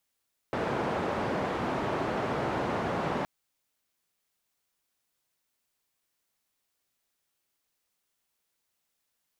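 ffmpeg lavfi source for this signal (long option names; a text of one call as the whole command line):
ffmpeg -f lavfi -i "anoisesrc=color=white:duration=2.72:sample_rate=44100:seed=1,highpass=frequency=100,lowpass=frequency=850,volume=-11.5dB" out.wav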